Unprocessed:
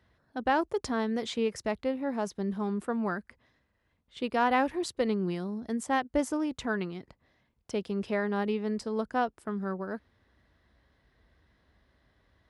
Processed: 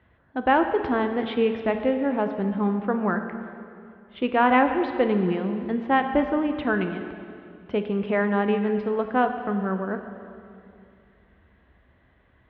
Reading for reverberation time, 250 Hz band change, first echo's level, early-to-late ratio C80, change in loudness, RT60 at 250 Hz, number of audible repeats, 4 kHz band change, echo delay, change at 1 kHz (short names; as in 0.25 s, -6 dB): 2.5 s, +7.0 dB, none, 9.0 dB, +7.0 dB, 2.7 s, none, +2.0 dB, none, +7.5 dB